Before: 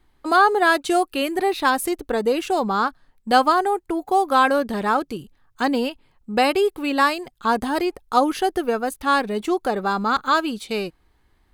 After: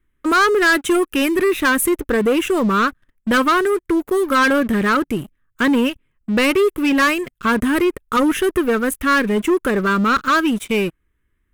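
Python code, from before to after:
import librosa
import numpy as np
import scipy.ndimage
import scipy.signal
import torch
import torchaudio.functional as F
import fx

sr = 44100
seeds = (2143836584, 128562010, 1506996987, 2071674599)

y = fx.fixed_phaser(x, sr, hz=1900.0, stages=4)
y = fx.leveller(y, sr, passes=3)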